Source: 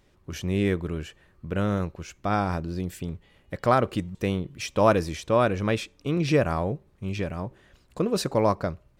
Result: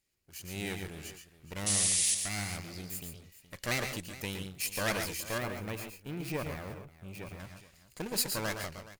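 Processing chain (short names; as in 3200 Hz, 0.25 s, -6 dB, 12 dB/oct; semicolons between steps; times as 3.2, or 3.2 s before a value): minimum comb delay 0.42 ms; 1.66–2.15 painted sound noise 1700–11000 Hz -33 dBFS; pre-emphasis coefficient 0.9; tapped delay 0.116/0.137/0.421 s -8/-10/-17 dB; AGC gain up to 11 dB; 5.38–7.4 bell 5900 Hz -12 dB 2.7 oct; gain -6 dB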